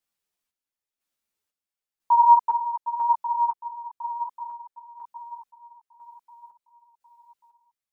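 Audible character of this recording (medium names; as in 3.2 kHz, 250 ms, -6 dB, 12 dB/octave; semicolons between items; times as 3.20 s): chopped level 1 Hz, depth 60%, duty 50%; a shimmering, thickened sound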